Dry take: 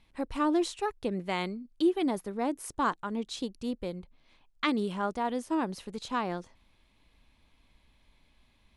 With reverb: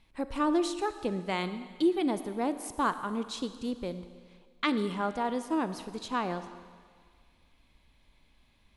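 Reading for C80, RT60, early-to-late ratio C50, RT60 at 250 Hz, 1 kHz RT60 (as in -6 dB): 12.5 dB, 1.8 s, 11.5 dB, 1.7 s, 1.8 s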